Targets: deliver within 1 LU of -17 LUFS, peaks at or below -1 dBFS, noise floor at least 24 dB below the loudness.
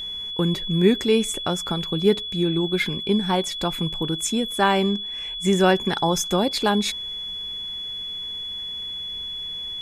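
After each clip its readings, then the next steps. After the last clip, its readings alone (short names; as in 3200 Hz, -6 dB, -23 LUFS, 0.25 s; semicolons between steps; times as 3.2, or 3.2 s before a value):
steady tone 3400 Hz; tone level -29 dBFS; loudness -23.0 LUFS; peak -5.0 dBFS; loudness target -17.0 LUFS
-> notch 3400 Hz, Q 30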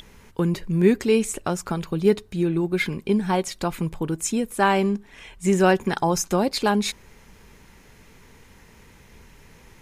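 steady tone none; loudness -23.0 LUFS; peak -5.5 dBFS; loudness target -17.0 LUFS
-> gain +6 dB; limiter -1 dBFS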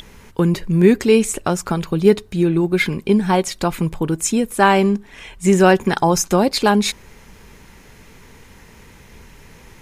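loudness -17.0 LUFS; peak -1.0 dBFS; noise floor -46 dBFS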